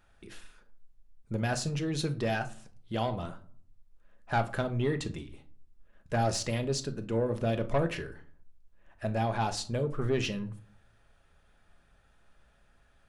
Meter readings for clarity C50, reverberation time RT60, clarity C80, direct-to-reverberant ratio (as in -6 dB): 15.5 dB, 0.50 s, 21.0 dB, 7.0 dB